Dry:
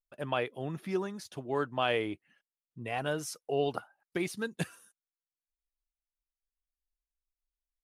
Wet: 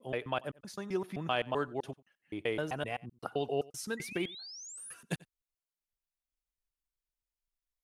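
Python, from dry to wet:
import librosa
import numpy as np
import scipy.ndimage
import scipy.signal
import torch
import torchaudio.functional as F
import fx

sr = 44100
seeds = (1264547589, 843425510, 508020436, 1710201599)

y = fx.block_reorder(x, sr, ms=129.0, group=5)
y = fx.spec_paint(y, sr, seeds[0], shape='rise', start_s=3.97, length_s=0.97, low_hz=1900.0, high_hz=11000.0, level_db=-45.0)
y = y + 10.0 ** (-22.5 / 20.0) * np.pad(y, (int(91 * sr / 1000.0), 0))[:len(y)]
y = y * 10.0 ** (-2.0 / 20.0)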